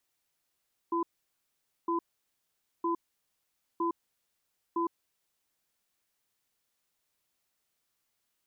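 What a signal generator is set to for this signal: cadence 338 Hz, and 1010 Hz, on 0.11 s, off 0.85 s, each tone -29.5 dBFS 4.36 s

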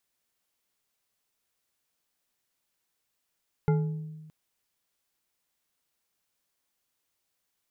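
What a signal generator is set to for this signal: glass hit bar, length 0.62 s, lowest mode 156 Hz, decay 1.35 s, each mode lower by 6 dB, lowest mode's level -19.5 dB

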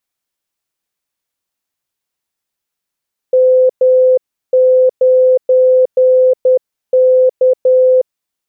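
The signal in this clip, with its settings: Morse "M9K" 10 wpm 512 Hz -5.5 dBFS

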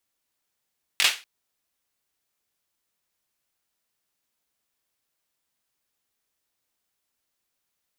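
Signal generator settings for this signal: hand clap length 0.24 s, bursts 3, apart 21 ms, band 2700 Hz, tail 0.29 s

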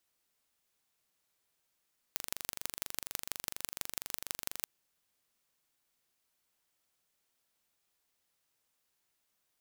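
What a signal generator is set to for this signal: pulse train 24.2/s, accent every 4, -6 dBFS 2.52 s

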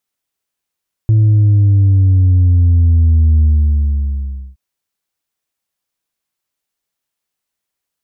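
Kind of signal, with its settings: sub drop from 110 Hz, over 3.47 s, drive 2 dB, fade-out 1.14 s, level -7 dB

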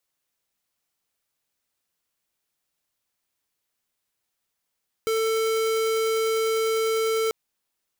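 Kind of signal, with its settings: tone square 445 Hz -23.5 dBFS 2.24 s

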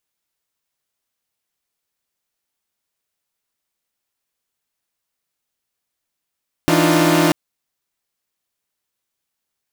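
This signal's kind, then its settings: chord E3/D4/D#4/F4 saw, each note -15.5 dBFS 0.64 s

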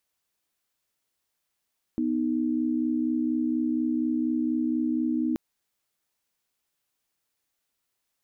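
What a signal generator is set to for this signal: chord B3/D#4 sine, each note -26 dBFS 3.38 s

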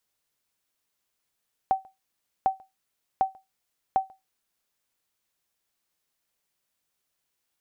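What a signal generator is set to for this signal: sonar ping 767 Hz, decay 0.19 s, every 0.75 s, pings 4, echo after 0.14 s, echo -27.5 dB -14 dBFS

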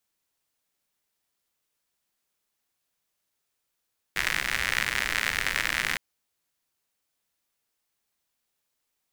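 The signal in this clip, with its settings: rain from filtered ticks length 1.81 s, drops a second 98, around 1900 Hz, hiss -11 dB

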